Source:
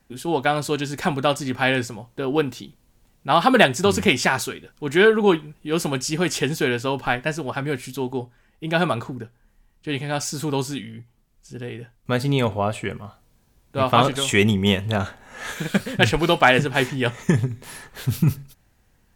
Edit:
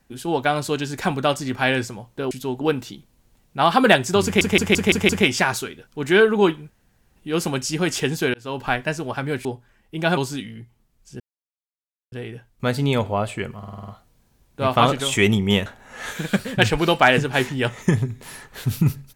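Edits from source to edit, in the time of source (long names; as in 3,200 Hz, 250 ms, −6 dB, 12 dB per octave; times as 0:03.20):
0:03.94: stutter 0.17 s, 6 plays
0:05.55: splice in room tone 0.46 s
0:06.73–0:07.04: fade in
0:07.84–0:08.14: move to 0:02.31
0:08.86–0:10.55: remove
0:11.58: splice in silence 0.92 s
0:13.04: stutter 0.05 s, 7 plays
0:14.82–0:15.07: remove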